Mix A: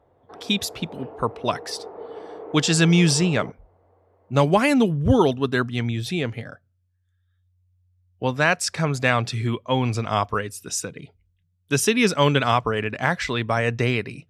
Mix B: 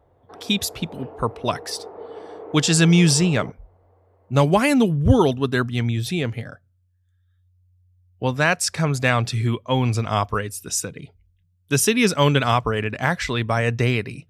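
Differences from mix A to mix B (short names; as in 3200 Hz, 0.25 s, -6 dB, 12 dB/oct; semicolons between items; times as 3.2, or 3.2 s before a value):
speech: add low shelf 96 Hz +9 dB; master: add high shelf 9600 Hz +9.5 dB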